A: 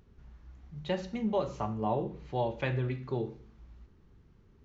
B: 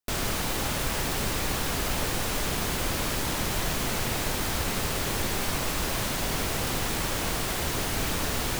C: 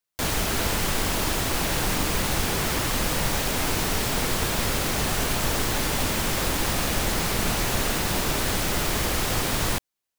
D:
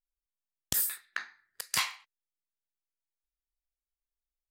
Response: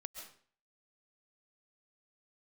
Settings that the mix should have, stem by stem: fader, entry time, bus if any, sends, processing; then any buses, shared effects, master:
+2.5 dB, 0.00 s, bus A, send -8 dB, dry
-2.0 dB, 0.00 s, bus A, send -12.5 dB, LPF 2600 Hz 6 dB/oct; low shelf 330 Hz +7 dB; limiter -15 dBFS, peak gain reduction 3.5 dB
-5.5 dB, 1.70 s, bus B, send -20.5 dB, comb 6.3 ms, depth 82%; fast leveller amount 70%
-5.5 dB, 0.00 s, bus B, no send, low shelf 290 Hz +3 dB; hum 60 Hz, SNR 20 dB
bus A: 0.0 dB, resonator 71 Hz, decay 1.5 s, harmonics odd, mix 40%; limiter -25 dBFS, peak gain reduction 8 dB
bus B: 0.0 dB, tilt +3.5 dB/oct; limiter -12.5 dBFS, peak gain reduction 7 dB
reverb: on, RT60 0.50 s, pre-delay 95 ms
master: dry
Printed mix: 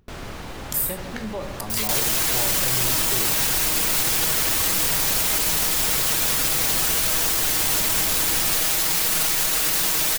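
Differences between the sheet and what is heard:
stem B: missing low shelf 330 Hz +7 dB; stem C -5.5 dB -> +3.5 dB

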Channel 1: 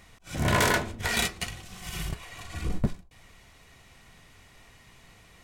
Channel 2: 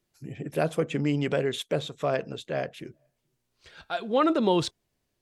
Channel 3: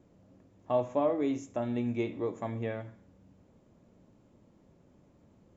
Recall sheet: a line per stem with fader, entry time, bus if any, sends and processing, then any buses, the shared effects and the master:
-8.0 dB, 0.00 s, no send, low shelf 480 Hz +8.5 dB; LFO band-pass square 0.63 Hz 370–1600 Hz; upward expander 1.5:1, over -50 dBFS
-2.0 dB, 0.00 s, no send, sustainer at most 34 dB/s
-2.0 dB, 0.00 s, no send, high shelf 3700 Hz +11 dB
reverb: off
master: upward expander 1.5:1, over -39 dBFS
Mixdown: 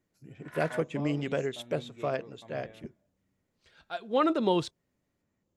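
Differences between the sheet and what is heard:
stem 2: missing sustainer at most 34 dB/s; stem 3 -2.0 dB -> -9.5 dB

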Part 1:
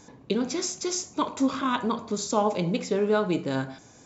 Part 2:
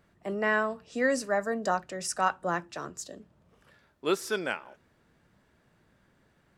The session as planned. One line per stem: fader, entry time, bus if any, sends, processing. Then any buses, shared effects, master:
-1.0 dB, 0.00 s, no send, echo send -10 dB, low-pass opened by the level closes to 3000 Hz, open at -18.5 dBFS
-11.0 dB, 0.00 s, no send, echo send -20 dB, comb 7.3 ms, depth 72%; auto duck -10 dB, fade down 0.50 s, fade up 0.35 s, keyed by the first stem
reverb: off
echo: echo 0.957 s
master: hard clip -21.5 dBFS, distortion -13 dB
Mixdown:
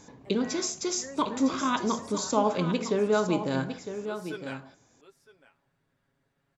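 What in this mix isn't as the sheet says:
stem 1: missing low-pass opened by the level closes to 3000 Hz, open at -18.5 dBFS; master: missing hard clip -21.5 dBFS, distortion -13 dB

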